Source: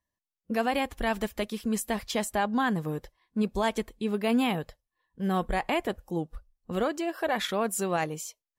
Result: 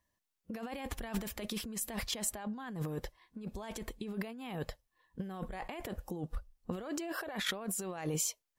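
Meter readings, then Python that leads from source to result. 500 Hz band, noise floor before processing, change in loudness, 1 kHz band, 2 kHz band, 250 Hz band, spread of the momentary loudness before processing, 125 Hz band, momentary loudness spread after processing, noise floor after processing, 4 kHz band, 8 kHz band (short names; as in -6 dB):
-13.0 dB, under -85 dBFS, -10.0 dB, -15.0 dB, -10.5 dB, -11.0 dB, 9 LU, -6.0 dB, 10 LU, -85 dBFS, -5.5 dB, -0.5 dB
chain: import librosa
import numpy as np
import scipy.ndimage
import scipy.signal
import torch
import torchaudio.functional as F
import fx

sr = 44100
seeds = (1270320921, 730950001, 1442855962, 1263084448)

y = fx.over_compress(x, sr, threshold_db=-37.0, ratio=-1.0)
y = y * librosa.db_to_amplitude(-2.5)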